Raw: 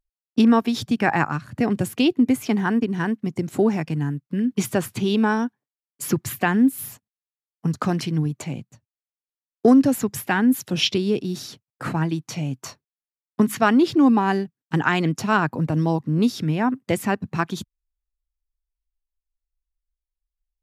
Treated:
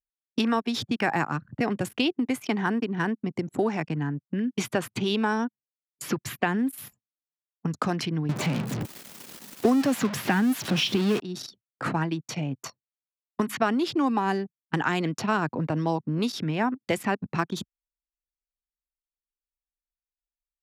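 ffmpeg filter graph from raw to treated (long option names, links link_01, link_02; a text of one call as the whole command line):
ffmpeg -i in.wav -filter_complex "[0:a]asettb=1/sr,asplit=3[link_01][link_02][link_03];[link_01]atrim=end=8.294[link_04];[link_02]atrim=start=8.29:end=11.2,asetpts=PTS-STARTPTS,afade=type=in:duration=0.004:curve=qsin,afade=type=out:start_time=2.906:duration=0.004:curve=qsin,aeval=exprs='val(0)+0.5*0.0501*sgn(val(0))':channel_layout=same,equalizer=frequency=190:width_type=o:width=1.6:gain=12[link_05];[link_03]atrim=start=11.196[link_06];[link_04][link_05]acrossfade=duration=0.004:curve1=hsin:curve2=qsin[link_07];[link_07][link_06]acrossfade=duration=0.004:curve1=qsin:curve2=hsin,anlmdn=3.98,highpass=frequency=190:poles=1,acrossover=split=630|5000[link_08][link_09][link_10];[link_08]acompressor=threshold=-27dB:ratio=4[link_11];[link_09]acompressor=threshold=-27dB:ratio=4[link_12];[link_10]acompressor=threshold=-44dB:ratio=4[link_13];[link_11][link_12][link_13]amix=inputs=3:normalize=0,volume=1.5dB" out.wav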